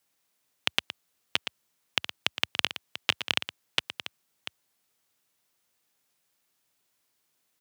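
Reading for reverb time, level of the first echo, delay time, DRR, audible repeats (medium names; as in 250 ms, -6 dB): no reverb, -12.0 dB, 116 ms, no reverb, 2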